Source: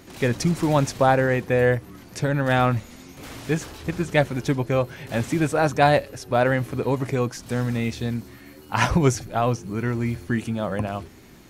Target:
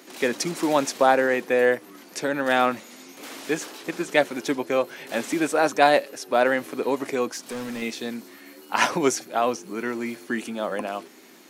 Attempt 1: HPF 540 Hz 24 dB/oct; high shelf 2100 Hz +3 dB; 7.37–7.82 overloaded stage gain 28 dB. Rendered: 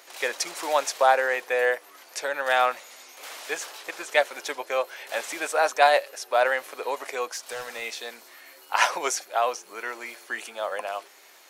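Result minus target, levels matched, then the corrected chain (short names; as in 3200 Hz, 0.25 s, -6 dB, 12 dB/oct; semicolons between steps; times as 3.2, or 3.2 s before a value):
250 Hz band -17.0 dB
HPF 250 Hz 24 dB/oct; high shelf 2100 Hz +3 dB; 7.37–7.82 overloaded stage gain 28 dB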